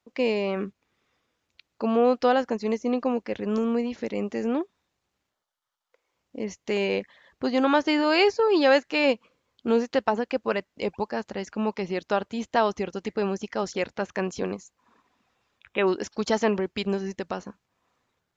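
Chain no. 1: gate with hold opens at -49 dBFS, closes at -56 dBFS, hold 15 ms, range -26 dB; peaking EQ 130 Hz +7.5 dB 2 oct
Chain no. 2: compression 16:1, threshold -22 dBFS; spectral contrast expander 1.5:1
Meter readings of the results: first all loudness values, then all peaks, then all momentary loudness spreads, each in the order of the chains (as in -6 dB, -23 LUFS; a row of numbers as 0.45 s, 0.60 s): -24.0 LUFS, -27.0 LUFS; -7.0 dBFS, -12.5 dBFS; 11 LU, 10 LU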